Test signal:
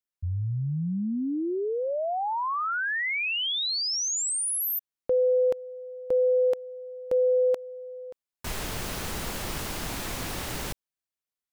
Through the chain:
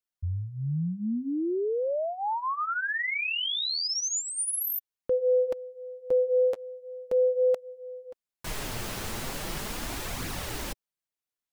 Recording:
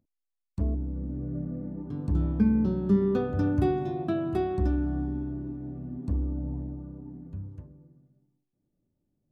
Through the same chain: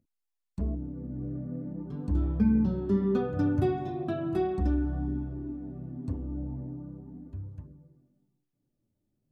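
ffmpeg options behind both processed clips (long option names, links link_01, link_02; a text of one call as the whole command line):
ffmpeg -i in.wav -af "flanger=delay=0.4:depth=9.5:regen=-23:speed=0.39:shape=triangular,volume=2dB" out.wav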